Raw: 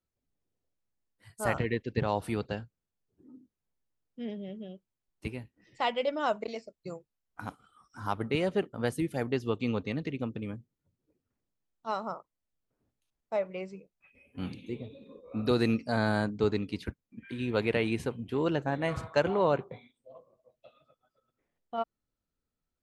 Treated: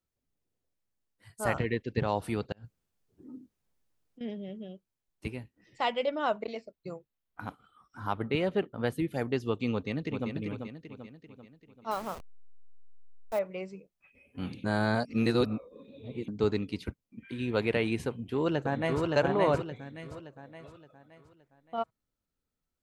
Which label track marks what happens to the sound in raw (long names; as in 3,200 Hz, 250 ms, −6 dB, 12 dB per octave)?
2.520000	4.210000	compressor whose output falls as the input rises −47 dBFS, ratio −0.5
6.060000	9.130000	flat-topped bell 7,200 Hz −8.5 dB 1.3 octaves
9.720000	10.280000	delay throw 390 ms, feedback 50%, level −6 dB
11.910000	13.390000	hold until the input has moved step −39.5 dBFS
14.640000	16.280000	reverse
16.800000	17.330000	notch filter 1,700 Hz, Q 5.5
18.080000	19.050000	delay throw 570 ms, feedback 40%, level −2 dB
19.700000	20.120000	parametric band 840 Hz −9.5 dB 1.4 octaves